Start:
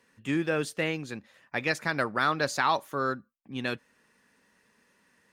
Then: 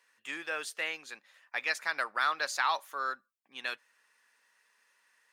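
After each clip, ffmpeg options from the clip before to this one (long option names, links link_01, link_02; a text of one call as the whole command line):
ffmpeg -i in.wav -af "highpass=940,volume=-1.5dB" out.wav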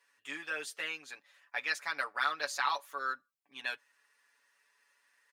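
ffmpeg -i in.wav -af "aecho=1:1:7:0.94,volume=-5dB" out.wav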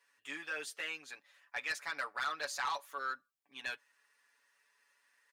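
ffmpeg -i in.wav -af "asoftclip=type=tanh:threshold=-27dB,volume=-1.5dB" out.wav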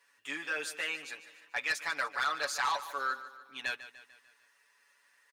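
ffmpeg -i in.wav -af "aecho=1:1:148|296|444|592|740:0.2|0.102|0.0519|0.0265|0.0135,volume=5dB" out.wav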